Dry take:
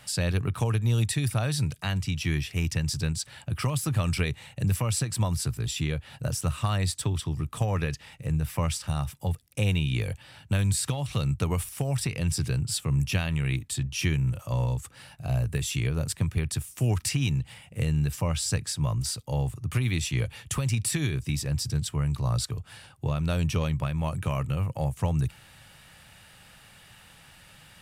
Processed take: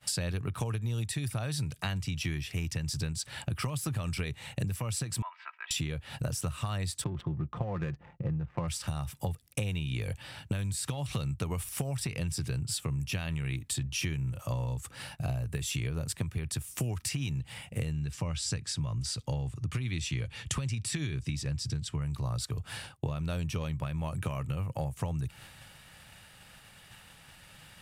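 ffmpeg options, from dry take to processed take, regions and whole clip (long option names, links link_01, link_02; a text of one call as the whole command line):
ffmpeg -i in.wav -filter_complex "[0:a]asettb=1/sr,asplit=3[link_01][link_02][link_03];[link_01]atrim=end=5.224[link_04];[link_02]atrim=start=5.22:end=5.71,asetpts=PTS-STARTPTS,afade=type=in:duration=0.004:curve=qsin,afade=type=out:start_time=0.486:duration=0.004:curve=qsin,asuperpass=centerf=1500:order=8:qfactor=0.85,aecho=1:1:3.1:0.59,atrim=end_sample=21609[link_05];[link_03]atrim=start=5.706[link_06];[link_04][link_05]acrossfade=duration=0.004:curve1=hsin:curve2=qsin[link_07];[link_07][link_06]acrossfade=duration=0.004:curve1=qsin:curve2=hsin,asettb=1/sr,asplit=3[link_08][link_09][link_10];[link_08]atrim=end=7.044[link_11];[link_09]atrim=start=7.04:end=8.68,asetpts=PTS-STARTPTS,afade=type=in:duration=0.004:curve=qsin,afade=type=out:start_time=1.636:duration=0.004:curve=qsin,aecho=1:1:5.7:0.47,atrim=end_sample=72324,adynamicsmooth=sensitivity=6.5:basefreq=710,lowpass=frequency=1700:poles=1[link_12];[link_10]atrim=start=8.676[link_13];[link_11][link_12]acrossfade=duration=0.004:curve1=hsin:curve2=qsin[link_14];[link_14][link_13]acrossfade=duration=0.004:curve1=qsin:curve2=hsin,asettb=1/sr,asplit=3[link_15][link_16][link_17];[link_15]atrim=end=17.934[link_18];[link_16]atrim=start=17.93:end=22.02,asetpts=PTS-STARTPTS,afade=type=in:duration=0.004:curve=qsin,afade=type=out:start_time=4.086:duration=0.004:curve=qsin,lowpass=7500,equalizer=frequency=710:width_type=o:width=1.7:gain=-4[link_19];[link_17]atrim=start=22.016[link_20];[link_18][link_19]acrossfade=duration=0.004:curve1=hsin:curve2=qsin[link_21];[link_21][link_20]acrossfade=duration=0.004:curve1=qsin:curve2=hsin,agate=range=-33dB:threshold=-45dB:ratio=3:detection=peak,acompressor=threshold=-37dB:ratio=12,volume=7dB" out.wav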